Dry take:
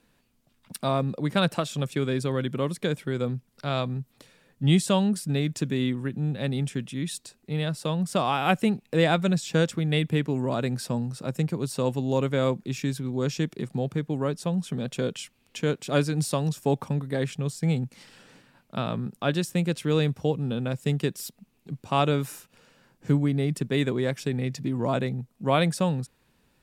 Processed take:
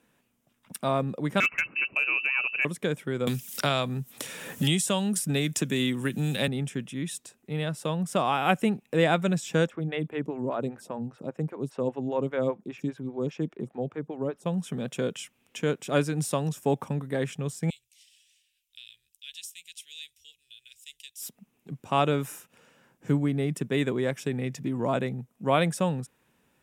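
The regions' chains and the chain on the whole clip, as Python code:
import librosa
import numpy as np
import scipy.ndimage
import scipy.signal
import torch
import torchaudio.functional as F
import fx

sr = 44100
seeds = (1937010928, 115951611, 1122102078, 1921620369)

y = fx.chain(x, sr, fx.freq_invert(carrier_hz=2800),
    fx.overload_stage(gain_db=16.0), at=(1.4, 2.65))
y = fx.chain(y, sr, fx.high_shelf(hz=3000.0, db=11.5),
    fx.band_squash(depth_pct=100), at=(3.27, 6.48))
y = fx.chain(y, sr, fx.lowpass(hz=2800.0, slope=6),
    fx.stagger_phaser(hz=5.0), at=(9.67, 14.46))
y = fx.chain(y, sr, fx.cheby2_bandstop(low_hz=130.0, high_hz=1300.0, order=4, stop_db=50),
    fx.bass_treble(bass_db=-7, treble_db=-2), at=(17.7, 21.22))
y = fx.highpass(y, sr, hz=160.0, slope=6)
y = fx.peak_eq(y, sr, hz=4400.0, db=-11.0, octaves=0.37)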